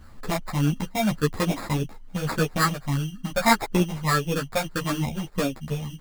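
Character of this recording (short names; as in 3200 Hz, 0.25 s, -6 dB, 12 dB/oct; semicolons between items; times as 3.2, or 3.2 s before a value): phasing stages 8, 1.7 Hz, lowest notch 330–1100 Hz; aliases and images of a low sample rate 3000 Hz, jitter 0%; a shimmering, thickened sound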